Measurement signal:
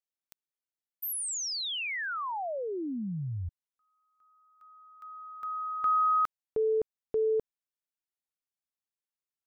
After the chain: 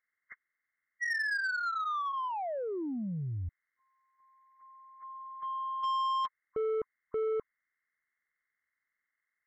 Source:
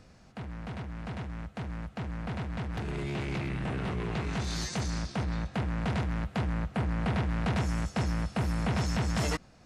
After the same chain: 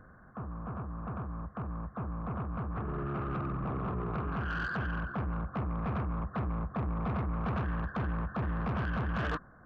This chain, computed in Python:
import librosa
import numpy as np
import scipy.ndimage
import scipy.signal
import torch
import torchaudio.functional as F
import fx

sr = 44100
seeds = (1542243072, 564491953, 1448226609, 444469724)

y = fx.freq_compress(x, sr, knee_hz=1000.0, ratio=4.0)
y = 10.0 ** (-28.5 / 20.0) * np.tanh(y / 10.0 ** (-28.5 / 20.0))